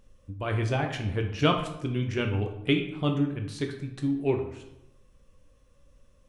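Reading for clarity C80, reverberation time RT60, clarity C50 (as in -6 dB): 11.0 dB, 0.85 s, 8.0 dB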